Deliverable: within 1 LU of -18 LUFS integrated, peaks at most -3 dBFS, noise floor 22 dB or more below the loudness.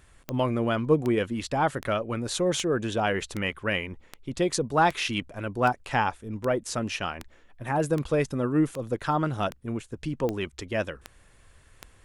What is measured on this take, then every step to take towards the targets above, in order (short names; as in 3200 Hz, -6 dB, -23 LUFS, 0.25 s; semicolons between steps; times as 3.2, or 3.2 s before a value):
clicks 16; loudness -27.5 LUFS; peak -9.5 dBFS; loudness target -18.0 LUFS
-> de-click; gain +9.5 dB; limiter -3 dBFS